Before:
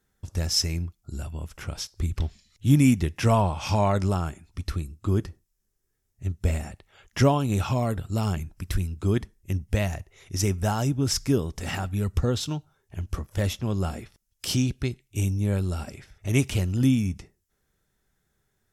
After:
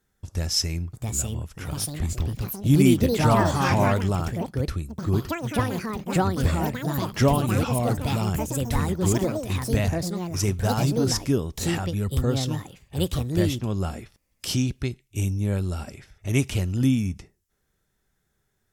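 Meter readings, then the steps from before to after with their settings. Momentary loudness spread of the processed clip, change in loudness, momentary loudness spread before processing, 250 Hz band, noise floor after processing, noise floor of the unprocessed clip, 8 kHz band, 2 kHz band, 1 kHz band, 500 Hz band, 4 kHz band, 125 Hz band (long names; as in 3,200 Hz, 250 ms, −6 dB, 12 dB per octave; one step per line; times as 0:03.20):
10 LU, +2.0 dB, 13 LU, +2.5 dB, −73 dBFS, −75 dBFS, +3.0 dB, +3.5 dB, +3.5 dB, +3.0 dB, +1.5 dB, +1.5 dB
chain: delay with pitch and tempo change per echo 758 ms, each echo +5 semitones, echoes 3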